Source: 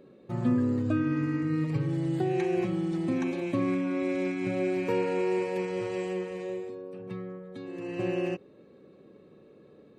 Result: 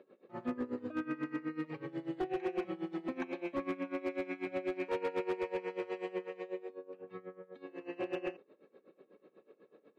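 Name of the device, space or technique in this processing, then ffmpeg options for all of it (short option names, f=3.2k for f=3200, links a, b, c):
helicopter radio: -af "highpass=390,lowpass=2.9k,aeval=exprs='val(0)*pow(10,-19*(0.5-0.5*cos(2*PI*8.1*n/s))/20)':c=same,asoftclip=type=hard:threshold=-29.5dB,volume=1dB"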